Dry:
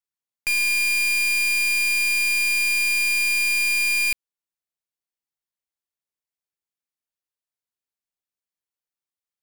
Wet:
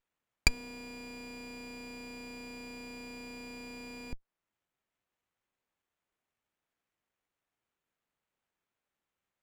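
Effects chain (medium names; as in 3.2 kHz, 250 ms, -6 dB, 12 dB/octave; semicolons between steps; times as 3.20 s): low-pass that closes with the level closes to 470 Hz, closed at -21.5 dBFS; sliding maximum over 9 samples; trim +7.5 dB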